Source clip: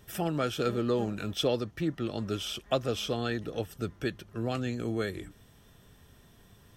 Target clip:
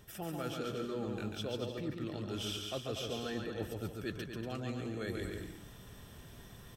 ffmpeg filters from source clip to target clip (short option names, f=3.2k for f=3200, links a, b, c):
-af "areverse,acompressor=threshold=-41dB:ratio=6,areverse,aecho=1:1:140|238|306.6|354.6|388.2:0.631|0.398|0.251|0.158|0.1,volume=3dB"